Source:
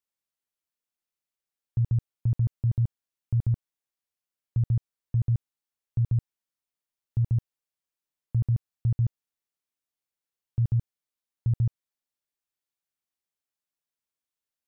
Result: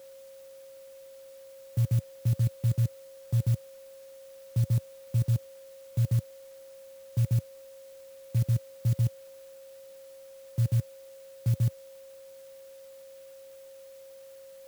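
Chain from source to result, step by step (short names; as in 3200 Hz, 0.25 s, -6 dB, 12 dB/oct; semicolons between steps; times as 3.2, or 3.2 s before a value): whine 540 Hz -46 dBFS; HPF 95 Hz 24 dB/oct; clock jitter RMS 0.086 ms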